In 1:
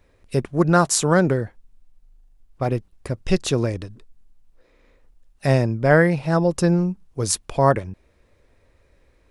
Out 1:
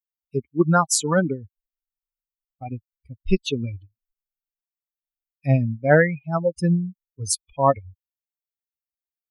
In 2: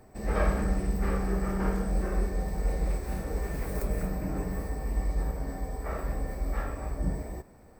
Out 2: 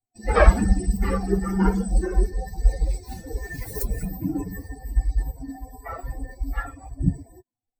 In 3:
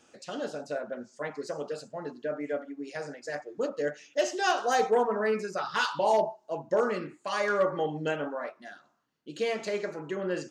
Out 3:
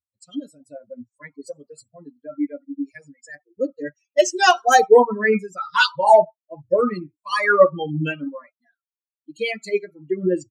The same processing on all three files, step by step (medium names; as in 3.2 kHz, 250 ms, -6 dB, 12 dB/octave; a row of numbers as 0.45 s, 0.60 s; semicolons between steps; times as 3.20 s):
expander on every frequency bin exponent 3; peak normalisation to -1.5 dBFS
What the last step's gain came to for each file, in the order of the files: +3.5 dB, +16.5 dB, +17.0 dB